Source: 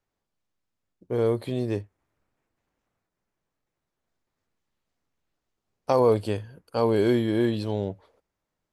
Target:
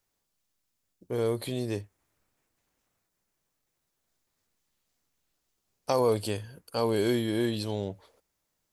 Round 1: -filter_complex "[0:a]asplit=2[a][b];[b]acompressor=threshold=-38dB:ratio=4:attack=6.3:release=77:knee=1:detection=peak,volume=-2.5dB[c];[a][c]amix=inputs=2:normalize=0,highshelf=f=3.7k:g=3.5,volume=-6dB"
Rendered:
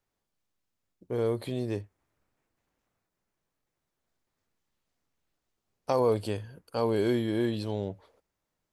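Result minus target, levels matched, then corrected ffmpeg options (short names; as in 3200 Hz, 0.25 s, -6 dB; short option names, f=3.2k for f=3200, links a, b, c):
8000 Hz band -8.5 dB
-filter_complex "[0:a]asplit=2[a][b];[b]acompressor=threshold=-38dB:ratio=4:attack=6.3:release=77:knee=1:detection=peak,volume=-2.5dB[c];[a][c]amix=inputs=2:normalize=0,highshelf=f=3.7k:g=14,volume=-6dB"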